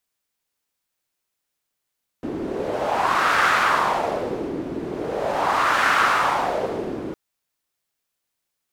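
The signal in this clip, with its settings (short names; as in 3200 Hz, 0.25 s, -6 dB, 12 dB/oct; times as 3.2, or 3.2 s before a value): wind-like swept noise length 4.91 s, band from 310 Hz, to 1400 Hz, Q 2.7, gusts 2, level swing 11 dB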